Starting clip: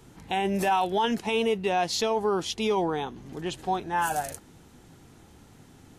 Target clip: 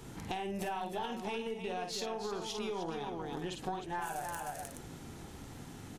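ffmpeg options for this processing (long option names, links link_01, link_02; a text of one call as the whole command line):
ffmpeg -i in.wav -af "aecho=1:1:49|306|422:0.501|0.422|0.178,acompressor=threshold=-40dB:ratio=6,aeval=exprs='0.0473*(cos(1*acos(clip(val(0)/0.0473,-1,1)))-cos(1*PI/2))+0.015*(cos(2*acos(clip(val(0)/0.0473,-1,1)))-cos(2*PI/2))':channel_layout=same,volume=3dB" out.wav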